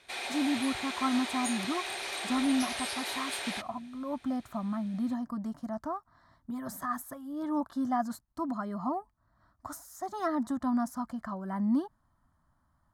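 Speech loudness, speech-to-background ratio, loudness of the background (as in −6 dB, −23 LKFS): −34.0 LKFS, 1.0 dB, −35.0 LKFS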